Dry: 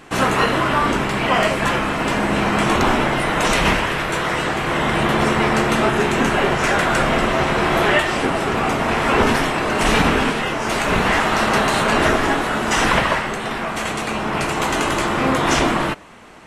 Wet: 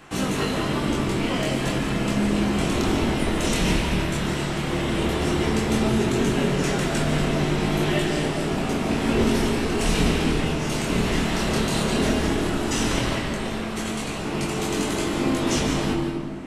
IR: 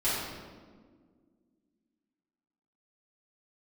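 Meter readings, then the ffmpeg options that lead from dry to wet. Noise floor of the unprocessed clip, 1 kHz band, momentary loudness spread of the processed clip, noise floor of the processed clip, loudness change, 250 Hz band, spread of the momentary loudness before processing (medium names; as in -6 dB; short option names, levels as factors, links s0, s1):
-25 dBFS, -11.5 dB, 4 LU, -28 dBFS, -5.5 dB, -1.0 dB, 5 LU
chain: -filter_complex "[0:a]acrossover=split=460|3000[s0][s1][s2];[s1]acompressor=threshold=0.00794:ratio=2[s3];[s0][s3][s2]amix=inputs=3:normalize=0,flanger=delay=20:depth=7:speed=0.13,asplit=2[s4][s5];[1:a]atrim=start_sample=2205,adelay=141[s6];[s5][s6]afir=irnorm=-1:irlink=0,volume=0.211[s7];[s4][s7]amix=inputs=2:normalize=0"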